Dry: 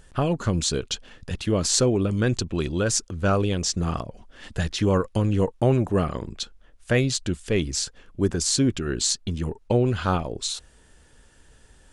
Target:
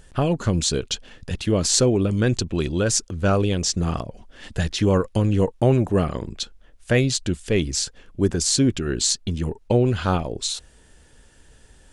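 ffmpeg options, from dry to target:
ffmpeg -i in.wav -af "equalizer=frequency=1200:width_type=o:width=0.77:gain=-3,volume=2.5dB" out.wav

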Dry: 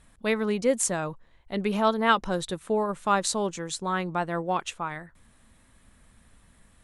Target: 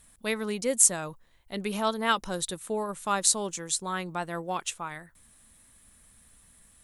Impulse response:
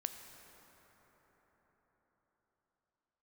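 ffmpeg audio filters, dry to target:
-af "aemphasis=mode=production:type=75fm,volume=-4.5dB"

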